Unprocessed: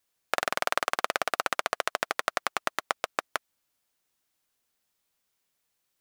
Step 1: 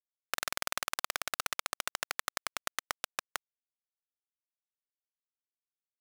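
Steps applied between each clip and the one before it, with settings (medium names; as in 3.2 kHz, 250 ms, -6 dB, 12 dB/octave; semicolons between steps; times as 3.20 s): differentiator; word length cut 6-bit, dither none; overdrive pedal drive 13 dB, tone 6.5 kHz, clips at -10 dBFS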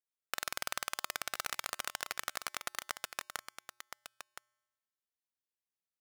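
feedback comb 120 Hz, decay 1.2 s, harmonics odd, mix 30%; delay 1018 ms -9.5 dB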